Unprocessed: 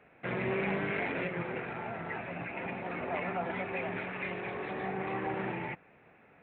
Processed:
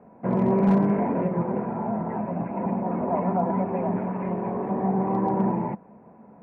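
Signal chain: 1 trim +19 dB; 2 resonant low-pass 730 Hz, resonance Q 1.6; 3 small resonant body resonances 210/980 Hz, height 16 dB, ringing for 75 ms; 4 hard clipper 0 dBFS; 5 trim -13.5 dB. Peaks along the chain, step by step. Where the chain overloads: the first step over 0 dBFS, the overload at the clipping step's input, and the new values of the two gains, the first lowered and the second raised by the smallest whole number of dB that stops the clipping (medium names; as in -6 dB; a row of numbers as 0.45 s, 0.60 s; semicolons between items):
-3.0 dBFS, -1.0 dBFS, +4.5 dBFS, 0.0 dBFS, -13.5 dBFS; step 3, 4.5 dB; step 1 +14 dB, step 5 -8.5 dB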